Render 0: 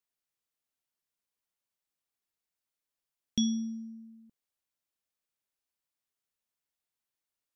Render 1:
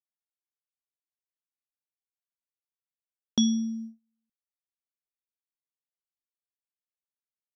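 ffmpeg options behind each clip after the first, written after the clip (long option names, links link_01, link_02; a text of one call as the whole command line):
ffmpeg -i in.wav -af "agate=range=-34dB:threshold=-43dB:ratio=16:detection=peak,volume=5dB" out.wav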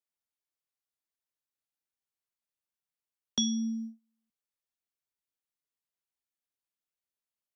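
ffmpeg -i in.wav -filter_complex "[0:a]acrossover=split=110|330|1900[link_01][link_02][link_03][link_04];[link_02]alimiter=level_in=5.5dB:limit=-24dB:level=0:latency=1,volume=-5.5dB[link_05];[link_03]acompressor=threshold=-48dB:ratio=6[link_06];[link_01][link_05][link_06][link_04]amix=inputs=4:normalize=0" out.wav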